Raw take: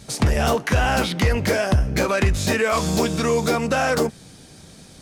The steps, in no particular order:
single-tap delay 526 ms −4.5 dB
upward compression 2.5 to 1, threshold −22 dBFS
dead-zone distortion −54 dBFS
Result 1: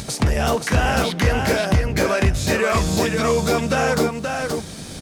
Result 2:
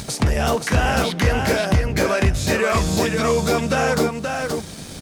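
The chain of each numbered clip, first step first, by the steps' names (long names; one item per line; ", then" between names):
upward compression, then dead-zone distortion, then single-tap delay
dead-zone distortion, then upward compression, then single-tap delay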